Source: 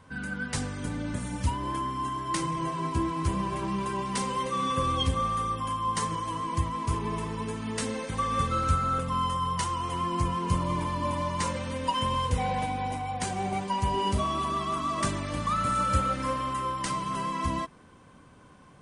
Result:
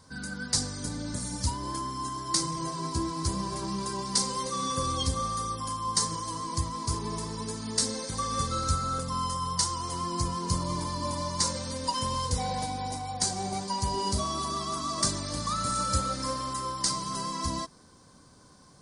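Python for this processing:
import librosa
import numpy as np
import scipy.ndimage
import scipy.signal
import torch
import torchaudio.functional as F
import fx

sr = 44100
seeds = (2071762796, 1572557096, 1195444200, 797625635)

y = fx.high_shelf_res(x, sr, hz=3600.0, db=9.0, q=3.0)
y = y * 10.0 ** (-2.5 / 20.0)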